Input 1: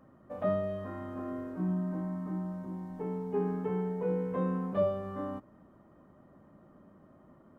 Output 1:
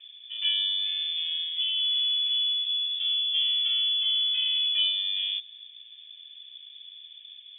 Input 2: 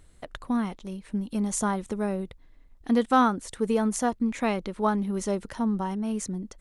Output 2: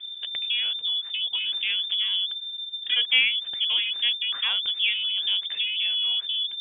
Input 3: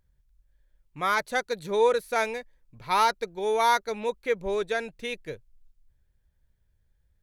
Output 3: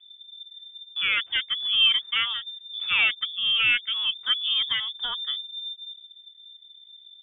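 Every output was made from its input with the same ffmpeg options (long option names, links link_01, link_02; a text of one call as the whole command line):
ffmpeg -i in.wav -filter_complex "[0:a]acrossover=split=190[link_01][link_02];[link_01]aeval=exprs='0.0531*sin(PI/2*5.01*val(0)/0.0531)':channel_layout=same[link_03];[link_03][link_02]amix=inputs=2:normalize=0,lowpass=frequency=3100:width_type=q:width=0.5098,lowpass=frequency=3100:width_type=q:width=0.6013,lowpass=frequency=3100:width_type=q:width=0.9,lowpass=frequency=3100:width_type=q:width=2.563,afreqshift=-3600" out.wav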